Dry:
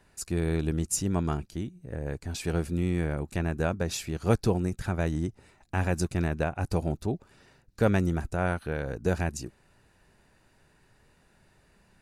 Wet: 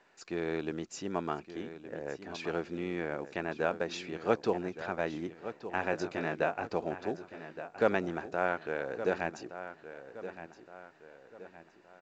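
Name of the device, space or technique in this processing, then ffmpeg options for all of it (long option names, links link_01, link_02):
telephone: -filter_complex "[0:a]asettb=1/sr,asplit=3[link_01][link_02][link_03];[link_01]atrim=end=5.914[link_04];[link_02]atrim=start=5.91:end=6.68,asetpts=PTS-STARTPTS,afade=type=in:duration=0.004:curve=qsin,afade=type=out:start_time=0.766:duration=0.004:curve=qsin,asplit=2[link_05][link_06];[link_06]adelay=19,volume=-5dB[link_07];[link_05][link_07]amix=inputs=2:normalize=0,atrim=end_sample=33957[link_08];[link_03]atrim=start=6.676[link_09];[link_04][link_08]acrossfade=duration=0.004:curve1=hsin:curve2=qsin[link_10];[link_10][link_09]acrossfade=duration=0.004:curve1=qsin:curve2=hsin,highpass=370,lowpass=3300,asplit=2[link_11][link_12];[link_12]adelay=1168,lowpass=frequency=4700:poles=1,volume=-12dB,asplit=2[link_13][link_14];[link_14]adelay=1168,lowpass=frequency=4700:poles=1,volume=0.42,asplit=2[link_15][link_16];[link_16]adelay=1168,lowpass=frequency=4700:poles=1,volume=0.42,asplit=2[link_17][link_18];[link_18]adelay=1168,lowpass=frequency=4700:poles=1,volume=0.42[link_19];[link_11][link_13][link_15][link_17][link_19]amix=inputs=5:normalize=0" -ar 16000 -c:a pcm_mulaw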